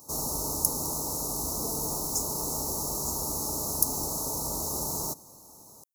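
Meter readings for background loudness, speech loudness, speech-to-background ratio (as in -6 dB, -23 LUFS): -29.5 LUFS, -32.5 LUFS, -3.0 dB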